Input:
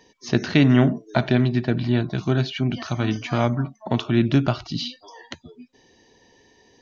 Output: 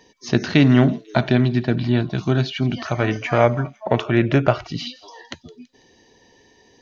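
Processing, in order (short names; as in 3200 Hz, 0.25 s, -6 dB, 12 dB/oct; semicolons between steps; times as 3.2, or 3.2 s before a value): 2.85–4.87 graphic EQ 250/500/2000/4000 Hz -6/+10/+8/-8 dB; thin delay 0.165 s, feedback 50%, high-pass 4500 Hz, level -14.5 dB; gain +2 dB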